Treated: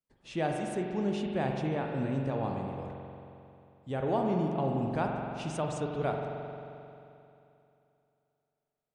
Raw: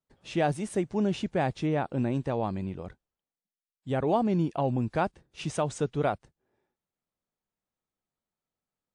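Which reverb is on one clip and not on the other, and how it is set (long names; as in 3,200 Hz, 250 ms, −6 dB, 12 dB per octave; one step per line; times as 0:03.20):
spring reverb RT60 2.8 s, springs 44 ms, chirp 35 ms, DRR 1 dB
level −5.5 dB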